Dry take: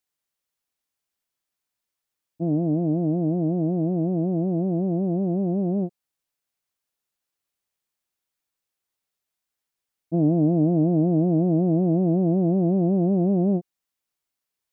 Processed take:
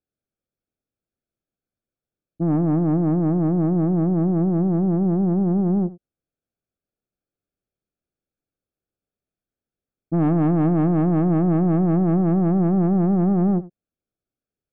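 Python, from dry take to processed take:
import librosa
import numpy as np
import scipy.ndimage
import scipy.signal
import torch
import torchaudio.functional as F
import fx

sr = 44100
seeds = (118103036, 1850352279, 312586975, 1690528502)

y = scipy.signal.lfilter(np.full(45, 1.0 / 45), 1.0, x)
y = 10.0 ** (-24.0 / 20.0) * np.tanh(y / 10.0 ** (-24.0 / 20.0))
y = y + 10.0 ** (-18.0 / 20.0) * np.pad(y, (int(84 * sr / 1000.0), 0))[:len(y)]
y = F.gain(torch.from_numpy(y), 8.5).numpy()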